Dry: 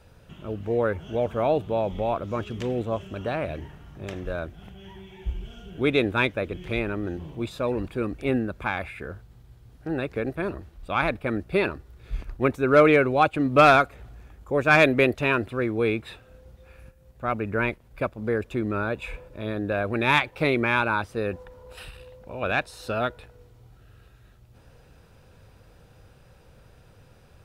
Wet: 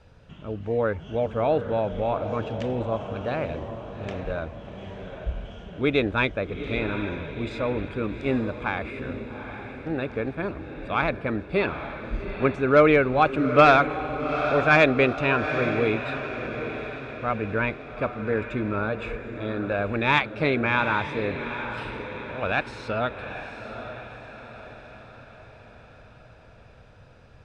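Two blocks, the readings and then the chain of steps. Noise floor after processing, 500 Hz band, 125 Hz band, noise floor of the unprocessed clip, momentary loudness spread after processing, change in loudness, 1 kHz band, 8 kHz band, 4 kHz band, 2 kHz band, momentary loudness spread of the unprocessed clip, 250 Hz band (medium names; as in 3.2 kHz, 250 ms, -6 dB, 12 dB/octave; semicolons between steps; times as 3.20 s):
-50 dBFS, +0.5 dB, +0.5 dB, -54 dBFS, 17 LU, -0.5 dB, +0.5 dB, no reading, -0.5 dB, +0.5 dB, 20 LU, 0.0 dB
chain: Bessel low-pass 5.2 kHz, order 4; band-stop 360 Hz, Q 12; on a send: echo that smears into a reverb 822 ms, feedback 52%, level -9 dB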